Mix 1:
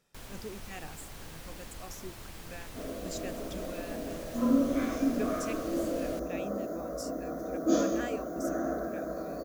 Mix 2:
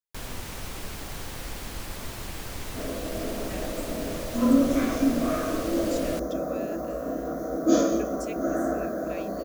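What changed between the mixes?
speech: entry +2.80 s; first sound +9.5 dB; second sound +5.5 dB

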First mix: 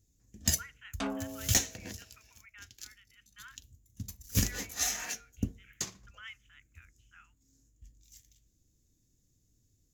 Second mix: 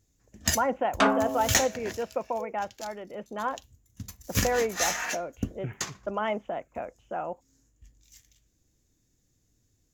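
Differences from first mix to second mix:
speech: remove steep high-pass 1400 Hz 48 dB/oct; second sound +6.5 dB; master: add bell 1200 Hz +11.5 dB 2.7 oct

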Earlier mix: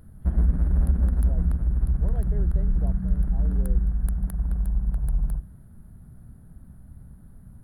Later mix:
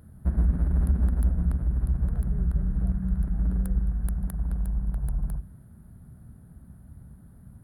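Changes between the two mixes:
speech -11.0 dB; master: add HPF 50 Hz

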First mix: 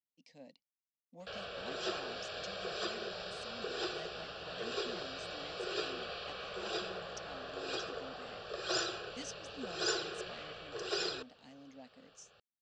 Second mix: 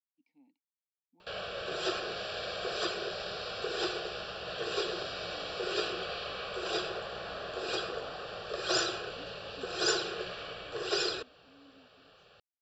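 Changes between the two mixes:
speech: add vowel filter u; background +5.0 dB

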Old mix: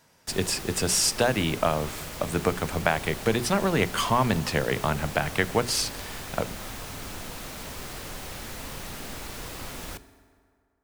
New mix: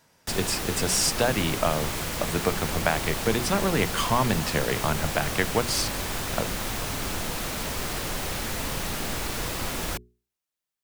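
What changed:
background +9.5 dB; reverb: off

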